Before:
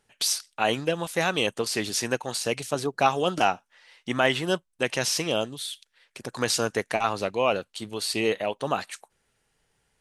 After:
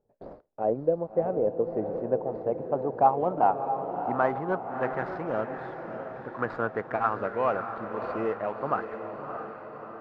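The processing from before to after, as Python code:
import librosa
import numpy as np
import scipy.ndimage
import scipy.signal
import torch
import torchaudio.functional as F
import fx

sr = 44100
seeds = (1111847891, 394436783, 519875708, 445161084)

y = scipy.signal.medfilt(x, 15)
y = fx.filter_sweep_lowpass(y, sr, from_hz=560.0, to_hz=1400.0, start_s=1.62, end_s=4.91, q=2.5)
y = fx.echo_diffused(y, sr, ms=633, feedback_pct=57, wet_db=-7.5)
y = F.gain(torch.from_numpy(y), -4.5).numpy()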